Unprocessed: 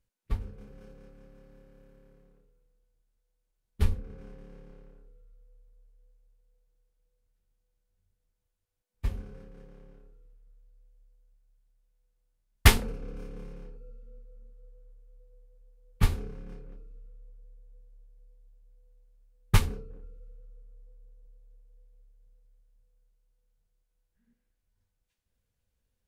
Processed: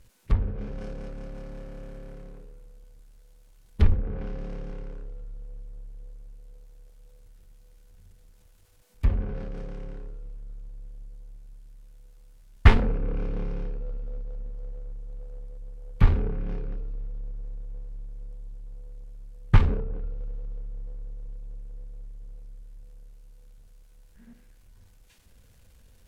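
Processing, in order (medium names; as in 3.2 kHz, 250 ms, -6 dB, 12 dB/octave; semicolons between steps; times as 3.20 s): bass shelf 120 Hz +3 dB; power-law waveshaper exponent 0.7; low-pass that closes with the level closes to 2.1 kHz, closed at -22 dBFS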